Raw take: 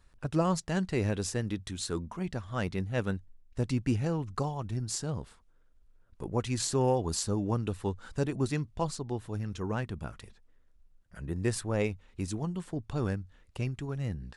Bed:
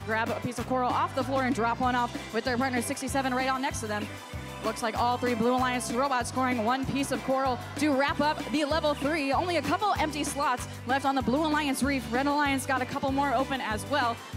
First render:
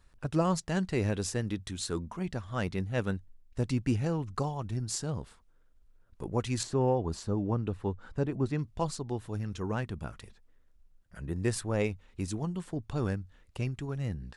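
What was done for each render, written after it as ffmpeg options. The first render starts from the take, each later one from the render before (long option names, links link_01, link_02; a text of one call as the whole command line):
ffmpeg -i in.wav -filter_complex "[0:a]asettb=1/sr,asplit=3[link_01][link_02][link_03];[link_01]atrim=end=6.634[link_04];[link_02]atrim=start=6.63:end=8.59,asetpts=PTS-STARTPTS,afade=type=in:duration=0.004:curve=qsin,afade=type=out:start_time=1.956:duration=0.004:curve=qsin,lowpass=frequency=1500:poles=1[link_05];[link_03]atrim=start=8.586[link_06];[link_04][link_05]acrossfade=duration=0.004:curve1=hsin:curve2=qsin[link_07];[link_07][link_06]acrossfade=duration=0.004:curve1=qsin:curve2=hsin" out.wav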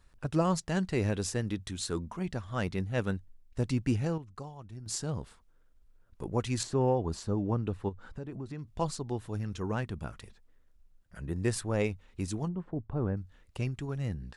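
ffmpeg -i in.wav -filter_complex "[0:a]asplit=3[link_01][link_02][link_03];[link_01]afade=type=out:start_time=7.88:duration=0.02[link_04];[link_02]acompressor=threshold=-37dB:ratio=4:attack=3.2:release=140:knee=1:detection=peak,afade=type=in:start_time=7.88:duration=0.02,afade=type=out:start_time=8.77:duration=0.02[link_05];[link_03]afade=type=in:start_time=8.77:duration=0.02[link_06];[link_04][link_05][link_06]amix=inputs=3:normalize=0,asettb=1/sr,asplit=3[link_07][link_08][link_09];[link_07]atrim=end=12.484[link_10];[link_08]atrim=start=12.48:end=13.17,asetpts=PTS-STARTPTS,afade=type=in:duration=0.004:curve=qsin,afade=type=out:start_time=0.686:duration=0.004:curve=qsin,lowpass=1100[link_11];[link_09]atrim=start=13.166[link_12];[link_10][link_11]acrossfade=duration=0.004:curve1=hsin:curve2=qsin[link_13];[link_13][link_12]acrossfade=duration=0.004:curve1=qsin:curve2=hsin,asplit=3[link_14][link_15][link_16];[link_14]atrim=end=4.18,asetpts=PTS-STARTPTS,afade=type=out:start_time=3.84:duration=0.34:curve=log:silence=0.281838[link_17];[link_15]atrim=start=4.18:end=4.86,asetpts=PTS-STARTPTS,volume=-11dB[link_18];[link_16]atrim=start=4.86,asetpts=PTS-STARTPTS,afade=type=in:duration=0.34:curve=log:silence=0.281838[link_19];[link_17][link_18][link_19]concat=n=3:v=0:a=1" out.wav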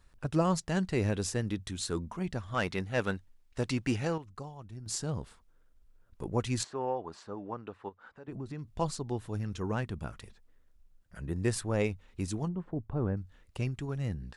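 ffmpeg -i in.wav -filter_complex "[0:a]asettb=1/sr,asplit=3[link_01][link_02][link_03];[link_01]atrim=end=2.544[link_04];[link_02]atrim=start=2.54:end=4.26,asetpts=PTS-STARTPTS,afade=type=in:duration=0.004:curve=qsin,afade=type=out:start_time=1.716:duration=0.004:curve=qsin,asplit=2[link_05][link_06];[link_06]highpass=frequency=720:poles=1,volume=11dB,asoftclip=type=tanh:threshold=-16dB[link_07];[link_05][link_07]amix=inputs=2:normalize=0,lowpass=frequency=6600:poles=1,volume=-6dB[link_08];[link_03]atrim=start=4.256[link_09];[link_04][link_08]acrossfade=duration=0.004:curve1=hsin:curve2=qsin[link_10];[link_10][link_09]acrossfade=duration=0.004:curve1=qsin:curve2=hsin,asettb=1/sr,asplit=3[link_11][link_12][link_13];[link_11]atrim=end=6.644[link_14];[link_12]atrim=start=6.64:end=8.28,asetpts=PTS-STARTPTS,afade=type=in:duration=0.004:curve=qsin,afade=type=out:start_time=1.636:duration=0.004:curve=qsin,bandpass=frequency=1300:width_type=q:width=0.71[link_15];[link_13]atrim=start=8.276[link_16];[link_14][link_15]acrossfade=duration=0.004:curve1=hsin:curve2=qsin[link_17];[link_17][link_16]acrossfade=duration=0.004:curve1=qsin:curve2=hsin" out.wav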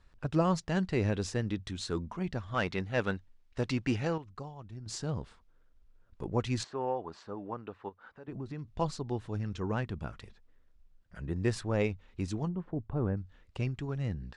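ffmpeg -i in.wav -af "lowpass=5400" out.wav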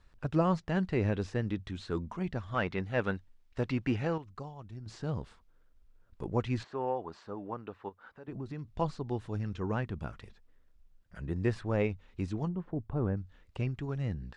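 ffmpeg -i in.wav -filter_complex "[0:a]acrossover=split=3200[link_01][link_02];[link_02]acompressor=threshold=-58dB:ratio=4:attack=1:release=60[link_03];[link_01][link_03]amix=inputs=2:normalize=0" out.wav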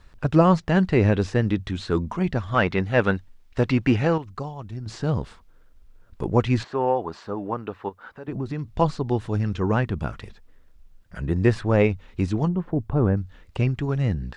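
ffmpeg -i in.wav -af "volume=11dB" out.wav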